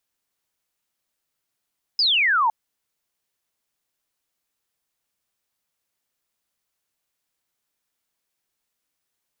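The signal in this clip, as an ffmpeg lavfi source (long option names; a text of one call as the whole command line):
ffmpeg -f lavfi -i "aevalsrc='0.158*clip(t/0.002,0,1)*clip((0.51-t)/0.002,0,1)*sin(2*PI*5200*0.51/log(850/5200)*(exp(log(850/5200)*t/0.51)-1))':duration=0.51:sample_rate=44100" out.wav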